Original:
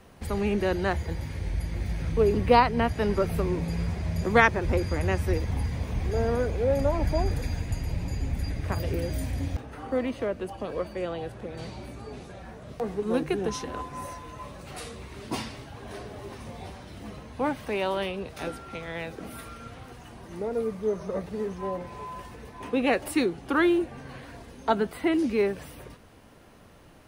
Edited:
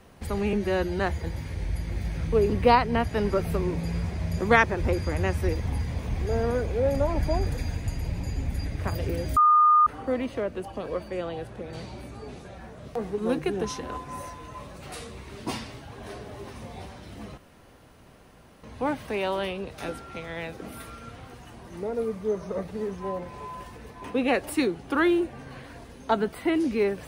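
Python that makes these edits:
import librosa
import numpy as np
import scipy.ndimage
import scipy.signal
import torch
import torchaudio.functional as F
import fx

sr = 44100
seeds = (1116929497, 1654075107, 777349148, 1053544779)

y = fx.edit(x, sr, fx.stretch_span(start_s=0.53, length_s=0.31, factor=1.5),
    fx.bleep(start_s=9.21, length_s=0.5, hz=1220.0, db=-14.5),
    fx.insert_room_tone(at_s=17.22, length_s=1.26), tone=tone)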